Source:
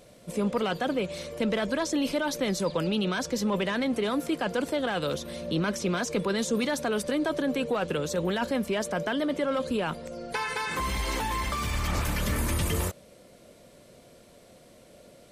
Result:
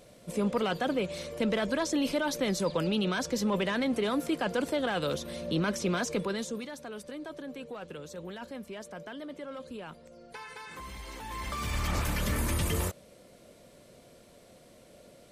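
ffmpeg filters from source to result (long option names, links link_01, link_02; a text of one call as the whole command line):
ffmpeg -i in.wav -af "volume=10dB,afade=type=out:start_time=6.04:duration=0.63:silence=0.251189,afade=type=in:start_time=11.19:duration=0.59:silence=0.266073" out.wav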